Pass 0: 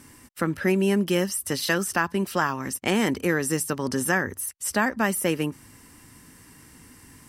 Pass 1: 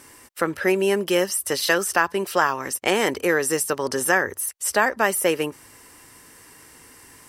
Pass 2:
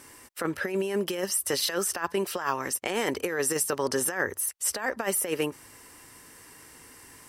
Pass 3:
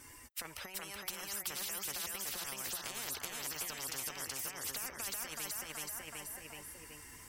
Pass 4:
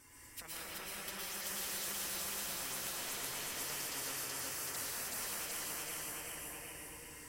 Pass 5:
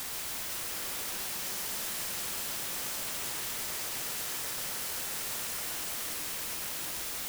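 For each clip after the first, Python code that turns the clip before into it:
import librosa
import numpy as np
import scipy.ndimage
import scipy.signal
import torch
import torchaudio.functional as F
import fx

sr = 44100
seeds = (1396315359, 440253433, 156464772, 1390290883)

y1 = fx.low_shelf_res(x, sr, hz=320.0, db=-9.0, q=1.5)
y1 = y1 * librosa.db_to_amplitude(4.0)
y2 = fx.over_compress(y1, sr, threshold_db=-22.0, ratio=-0.5)
y2 = y2 * librosa.db_to_amplitude(-4.5)
y3 = fx.bin_expand(y2, sr, power=1.5)
y3 = fx.echo_feedback(y3, sr, ms=376, feedback_pct=32, wet_db=-3)
y3 = fx.spectral_comp(y3, sr, ratio=10.0)
y3 = y3 * librosa.db_to_amplitude(-7.5)
y4 = fx.rev_plate(y3, sr, seeds[0], rt60_s=1.9, hf_ratio=0.8, predelay_ms=100, drr_db=-6.0)
y4 = y4 * librosa.db_to_amplitude(-6.5)
y5 = fx.quant_dither(y4, sr, seeds[1], bits=6, dither='triangular')
y5 = y5 + 10.0 ** (-6.0 / 20.0) * np.pad(y5, (int(134 * sr / 1000.0), 0))[:len(y5)]
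y5 = y5 * librosa.db_to_amplitude(-2.0)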